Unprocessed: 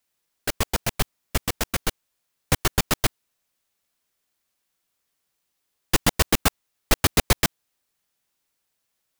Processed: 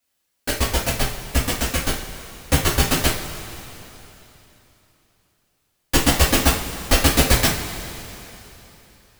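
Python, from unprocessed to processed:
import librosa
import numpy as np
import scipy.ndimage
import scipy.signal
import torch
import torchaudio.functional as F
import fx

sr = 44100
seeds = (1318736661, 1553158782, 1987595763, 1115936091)

y = fx.rev_double_slope(x, sr, seeds[0], early_s=0.34, late_s=3.4, knee_db=-17, drr_db=-6.0)
y = y * 10.0 ** (-2.5 / 20.0)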